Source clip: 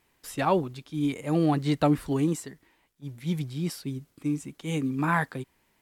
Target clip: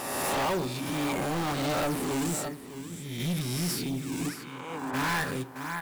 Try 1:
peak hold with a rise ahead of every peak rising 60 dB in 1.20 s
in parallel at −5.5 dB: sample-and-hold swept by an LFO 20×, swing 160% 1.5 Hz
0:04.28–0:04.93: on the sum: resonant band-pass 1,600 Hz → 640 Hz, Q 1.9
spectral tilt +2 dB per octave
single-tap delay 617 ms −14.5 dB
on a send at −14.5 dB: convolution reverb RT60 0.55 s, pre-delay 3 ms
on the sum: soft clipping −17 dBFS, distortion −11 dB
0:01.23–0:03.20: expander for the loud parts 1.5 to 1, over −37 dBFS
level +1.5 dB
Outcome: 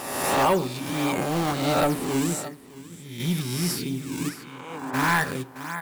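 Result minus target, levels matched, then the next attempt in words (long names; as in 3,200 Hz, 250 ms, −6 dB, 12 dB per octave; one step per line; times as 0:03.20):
soft clipping: distortion −7 dB
peak hold with a rise ahead of every peak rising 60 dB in 1.20 s
in parallel at −5.5 dB: sample-and-hold swept by an LFO 20×, swing 160% 1.5 Hz
0:04.28–0:04.93: on the sum: resonant band-pass 1,600 Hz → 640 Hz, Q 1.9
spectral tilt +2 dB per octave
single-tap delay 617 ms −14.5 dB
on a send at −14.5 dB: convolution reverb RT60 0.55 s, pre-delay 3 ms
on the sum: soft clipping −27.5 dBFS, distortion −4 dB
0:01.23–0:03.20: expander for the loud parts 1.5 to 1, over −37 dBFS
level +1.5 dB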